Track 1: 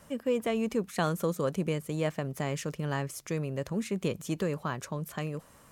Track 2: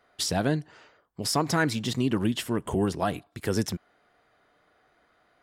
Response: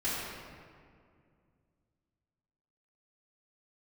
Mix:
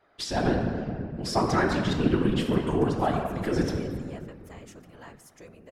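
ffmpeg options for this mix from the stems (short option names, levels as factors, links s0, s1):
-filter_complex "[0:a]lowshelf=f=230:g=-11.5,adelay=2100,volume=0.473,asplit=2[s0][s1];[s1]volume=0.0668[s2];[1:a]aemphasis=mode=reproduction:type=50fm,volume=1.41,asplit=2[s3][s4];[s4]volume=0.501[s5];[2:a]atrim=start_sample=2205[s6];[s2][s5]amix=inputs=2:normalize=0[s7];[s7][s6]afir=irnorm=-1:irlink=0[s8];[s0][s3][s8]amix=inputs=3:normalize=0,afftfilt=real='hypot(re,im)*cos(2*PI*random(0))':imag='hypot(re,im)*sin(2*PI*random(1))':win_size=512:overlap=0.75"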